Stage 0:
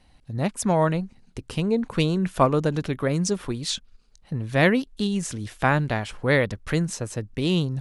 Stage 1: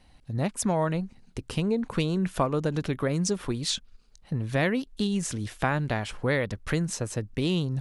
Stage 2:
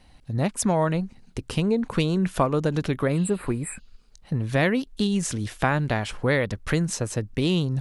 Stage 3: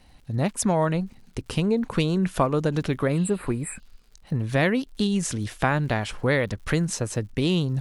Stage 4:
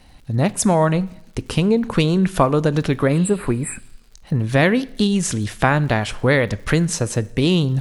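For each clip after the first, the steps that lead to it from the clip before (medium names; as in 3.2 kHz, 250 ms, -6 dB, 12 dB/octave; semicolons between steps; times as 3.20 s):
compression 3:1, threshold -23 dBFS, peak gain reduction 8 dB
spectral replace 3.15–4.04 s, 2.6–7.4 kHz both; trim +3.5 dB
crackle 110 per s -46 dBFS
reverberation RT60 0.75 s, pre-delay 6 ms, DRR 18 dB; trim +6 dB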